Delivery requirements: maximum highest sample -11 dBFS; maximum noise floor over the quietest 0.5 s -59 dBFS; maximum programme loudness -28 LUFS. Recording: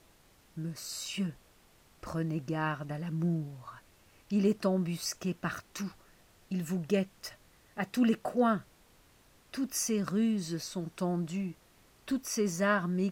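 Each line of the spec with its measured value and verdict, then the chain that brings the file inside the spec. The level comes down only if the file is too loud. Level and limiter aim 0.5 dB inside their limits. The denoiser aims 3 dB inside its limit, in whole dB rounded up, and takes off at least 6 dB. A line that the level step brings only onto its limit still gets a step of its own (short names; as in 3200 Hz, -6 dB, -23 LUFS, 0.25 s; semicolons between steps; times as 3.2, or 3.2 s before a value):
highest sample -15.5 dBFS: OK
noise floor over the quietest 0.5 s -63 dBFS: OK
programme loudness -33.0 LUFS: OK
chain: none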